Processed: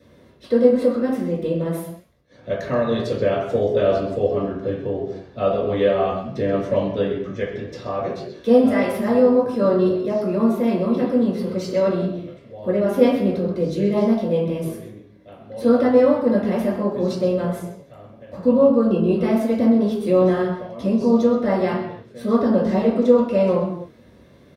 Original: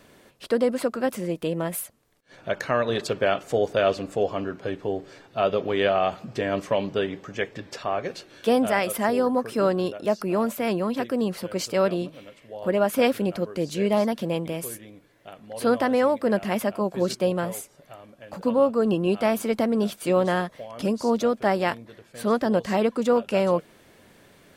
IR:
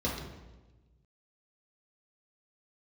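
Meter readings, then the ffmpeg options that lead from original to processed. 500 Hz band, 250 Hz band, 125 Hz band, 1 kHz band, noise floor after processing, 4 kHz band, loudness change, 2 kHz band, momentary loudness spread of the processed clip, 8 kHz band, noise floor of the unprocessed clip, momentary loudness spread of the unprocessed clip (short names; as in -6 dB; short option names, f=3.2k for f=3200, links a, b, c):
+5.0 dB, +7.0 dB, +6.5 dB, -0.5 dB, -50 dBFS, -3.5 dB, +5.0 dB, -3.0 dB, 12 LU, n/a, -56 dBFS, 10 LU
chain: -filter_complex "[0:a]asplit=2[a][b];[b]adelay=22,volume=-10.5dB[c];[a][c]amix=inputs=2:normalize=0[d];[1:a]atrim=start_sample=2205,afade=t=out:st=0.36:d=0.01,atrim=end_sample=16317[e];[d][e]afir=irnorm=-1:irlink=0,volume=-8.5dB"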